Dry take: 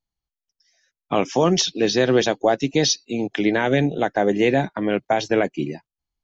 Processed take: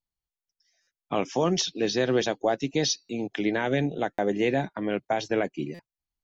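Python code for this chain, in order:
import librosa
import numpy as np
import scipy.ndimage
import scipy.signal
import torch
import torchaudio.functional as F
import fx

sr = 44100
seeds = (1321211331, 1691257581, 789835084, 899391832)

y = fx.buffer_glitch(x, sr, at_s=(0.82, 3.04, 4.13, 5.74), block=256, repeats=8)
y = y * librosa.db_to_amplitude(-6.5)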